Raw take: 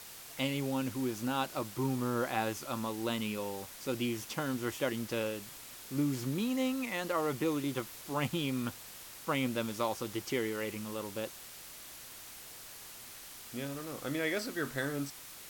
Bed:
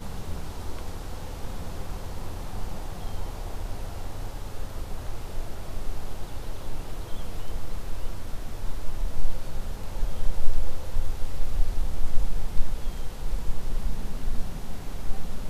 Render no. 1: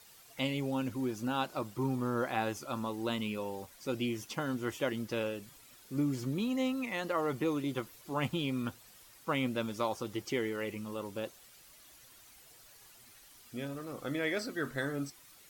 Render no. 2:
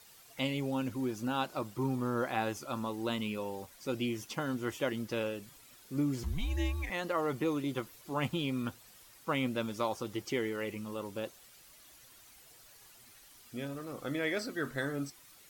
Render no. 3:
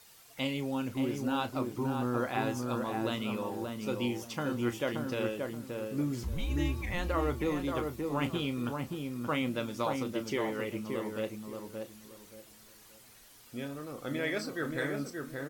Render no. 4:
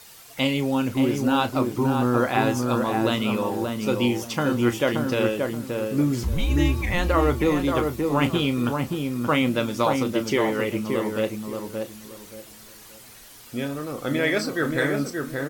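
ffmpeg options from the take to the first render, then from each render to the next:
-af "afftdn=nr=11:nf=-49"
-filter_complex "[0:a]asettb=1/sr,asplit=3[s0][s1][s2];[s0]atrim=end=6.234[s3];[s1]atrim=start=6.23:end=6.9,asetpts=PTS-STARTPTS,afade=t=in:d=0.004:c=qsin,afade=t=out:st=0.666:d=0.004:c=qsin,afreqshift=-190[s4];[s2]atrim=start=6.896[s5];[s3][s4]acrossfade=d=0.004:c1=hsin:c2=qsin[s6];[s6][s5]acrossfade=d=0.004:c1=qsin:c2=hsin"
-filter_complex "[0:a]asplit=2[s0][s1];[s1]adelay=33,volume=0.266[s2];[s0][s2]amix=inputs=2:normalize=0,asplit=2[s3][s4];[s4]adelay=577,lowpass=f=1300:p=1,volume=0.708,asplit=2[s5][s6];[s6]adelay=577,lowpass=f=1300:p=1,volume=0.28,asplit=2[s7][s8];[s8]adelay=577,lowpass=f=1300:p=1,volume=0.28,asplit=2[s9][s10];[s10]adelay=577,lowpass=f=1300:p=1,volume=0.28[s11];[s3][s5][s7][s9][s11]amix=inputs=5:normalize=0"
-af "volume=3.35"

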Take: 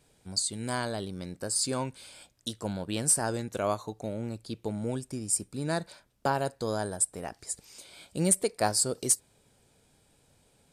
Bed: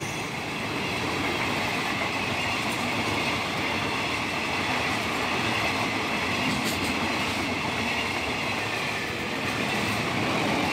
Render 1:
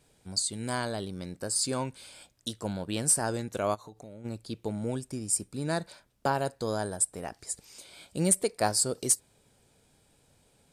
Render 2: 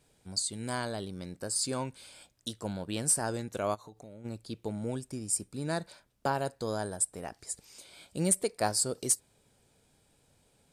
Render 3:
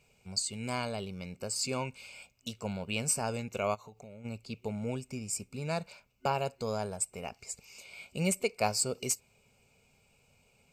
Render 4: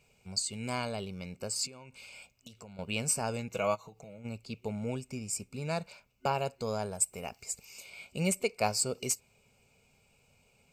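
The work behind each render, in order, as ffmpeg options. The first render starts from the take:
-filter_complex "[0:a]asplit=3[s0][s1][s2];[s0]afade=t=out:st=3.74:d=0.02[s3];[s1]acompressor=threshold=0.00631:ratio=4:attack=3.2:release=140:knee=1:detection=peak,afade=t=in:st=3.74:d=0.02,afade=t=out:st=4.24:d=0.02[s4];[s2]afade=t=in:st=4.24:d=0.02[s5];[s3][s4][s5]amix=inputs=3:normalize=0"
-af "volume=0.75"
-af "superequalizer=6b=0.282:11b=0.447:12b=3.16:13b=0.631:16b=0.251"
-filter_complex "[0:a]asettb=1/sr,asplit=3[s0][s1][s2];[s0]atrim=end=1.664[s3];[s1]atrim=start=1.66:end=2.79,asetpts=PTS-STARTPTS,afade=t=in:d=0.004:c=qsin,afade=t=out:st=1.126:d=0.004:c=qsin,acompressor=threshold=0.00562:ratio=16:attack=3.2:release=140:knee=1:detection=peak[s4];[s2]atrim=start=2.786[s5];[s3][s4]acrossfade=d=0.004:c1=hsin:c2=qsin[s6];[s6][s5]acrossfade=d=0.004:c1=qsin:c2=hsin,asettb=1/sr,asplit=3[s7][s8][s9];[s7]atrim=end=3.494[s10];[s8]atrim=start=3.49:end=4.19,asetpts=PTS-STARTPTS,afade=t=in:d=0.004:c=qsin,afade=t=out:st=0.696:d=0.004:c=qsin,aecho=1:1:6.2:0.57,atrim=end_sample=30870[s11];[s9]atrim=start=4.186[s12];[s10][s11]acrossfade=d=0.004:c1=hsin:c2=qsin[s13];[s13][s12]acrossfade=d=0.004:c1=qsin:c2=hsin,asettb=1/sr,asplit=3[s14][s15][s16];[s14]atrim=end=6.954[s17];[s15]atrim=start=6.95:end=7.9,asetpts=PTS-STARTPTS,afade=t=in:d=0.004:c=qsin,afade=t=out:st=0.946:d=0.004:c=qsin,highshelf=f=10000:g=11.5[s18];[s16]atrim=start=7.896[s19];[s17][s18]acrossfade=d=0.004:c1=hsin:c2=qsin[s20];[s20][s19]acrossfade=d=0.004:c1=qsin:c2=hsin"

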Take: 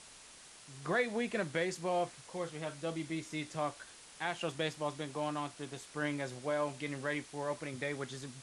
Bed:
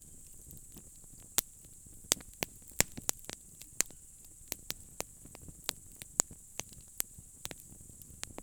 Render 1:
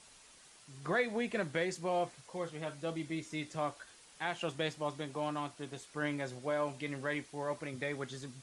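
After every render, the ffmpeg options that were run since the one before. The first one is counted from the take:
-af "afftdn=nr=6:nf=-56"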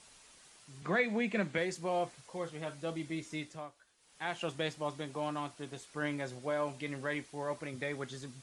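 -filter_complex "[0:a]asettb=1/sr,asplit=3[s0][s1][s2];[s0]atrim=end=0.824[s3];[s1]atrim=start=0.82:end=1.58,asetpts=PTS-STARTPTS,afade=t=in:d=0.004:c=qsin,afade=t=out:st=0.756:d=0.004:c=qsin,highpass=130,equalizer=f=200:t=q:w=4:g=9,equalizer=f=2300:t=q:w=4:g=6,equalizer=f=5400:t=q:w=4:g=-4,lowpass=f=8300:w=0.5412,lowpass=f=8300:w=1.3066[s4];[s2]atrim=start=1.576[s5];[s3][s4]acrossfade=d=0.004:c1=hsin:c2=qsin[s6];[s6][s5]acrossfade=d=0.004:c1=qsin:c2=hsin,asplit=3[s7][s8][s9];[s7]atrim=end=3.69,asetpts=PTS-STARTPTS,afade=t=out:st=3.36:d=0.33:silence=0.199526[s10];[s8]atrim=start=3.69:end=3.97,asetpts=PTS-STARTPTS,volume=0.2[s11];[s9]atrim=start=3.97,asetpts=PTS-STARTPTS,afade=t=in:d=0.33:silence=0.199526[s12];[s10][s11][s12]concat=n=3:v=0:a=1"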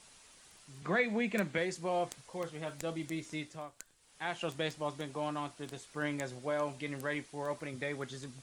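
-filter_complex "[1:a]volume=0.1[s0];[0:a][s0]amix=inputs=2:normalize=0"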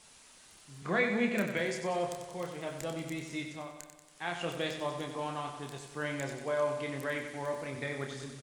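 -filter_complex "[0:a]asplit=2[s0][s1];[s1]adelay=29,volume=0.501[s2];[s0][s2]amix=inputs=2:normalize=0,aecho=1:1:93|186|279|372|465|558|651|744:0.398|0.239|0.143|0.086|0.0516|0.031|0.0186|0.0111"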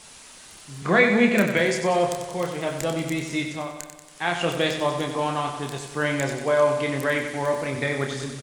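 -af "volume=3.76"

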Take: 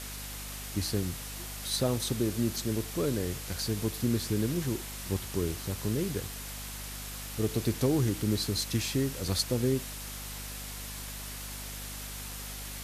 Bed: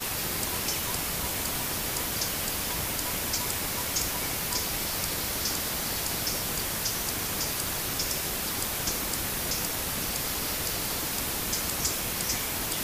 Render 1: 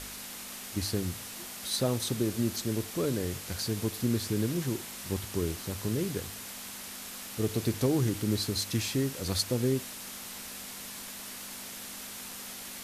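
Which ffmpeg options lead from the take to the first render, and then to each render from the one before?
-af "bandreject=f=50:t=h:w=4,bandreject=f=100:t=h:w=4,bandreject=f=150:t=h:w=4"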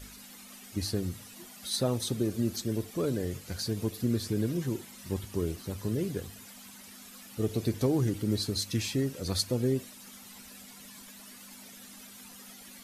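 -af "afftdn=nr=12:nf=-43"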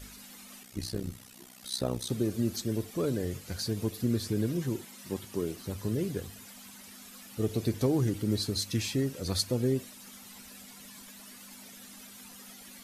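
-filter_complex "[0:a]asettb=1/sr,asplit=3[s0][s1][s2];[s0]atrim=end=0.634[s3];[s1]atrim=start=0.63:end=2.1,asetpts=PTS-STARTPTS,afade=t=in:d=0.004:c=qsin,afade=t=out:st=1.466:d=0.004:c=qsin,tremolo=f=63:d=0.824[s4];[s2]atrim=start=2.096[s5];[s3][s4]acrossfade=d=0.004:c1=hsin:c2=qsin[s6];[s6][s5]acrossfade=d=0.004:c1=qsin:c2=hsin,asettb=1/sr,asplit=3[s7][s8][s9];[s7]atrim=end=4.854[s10];[s8]atrim=start=4.85:end=5.59,asetpts=PTS-STARTPTS,afade=t=in:d=0.004:c=qsin,afade=t=out:st=0.736:d=0.004:c=qsin,highpass=160[s11];[s9]atrim=start=5.586[s12];[s10][s11]acrossfade=d=0.004:c1=hsin:c2=qsin[s13];[s13][s12]acrossfade=d=0.004:c1=qsin:c2=hsin"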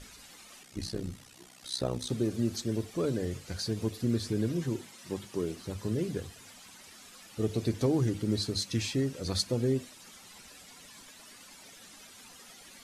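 -af "lowpass=8900,bandreject=f=50:t=h:w=6,bandreject=f=100:t=h:w=6,bandreject=f=150:t=h:w=6,bandreject=f=200:t=h:w=6,bandreject=f=250:t=h:w=6"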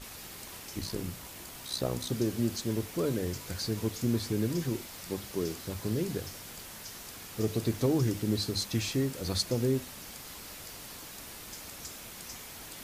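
-filter_complex "[1:a]volume=0.168[s0];[0:a][s0]amix=inputs=2:normalize=0"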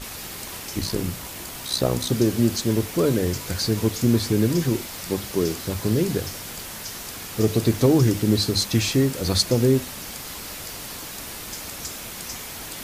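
-af "volume=3.16"

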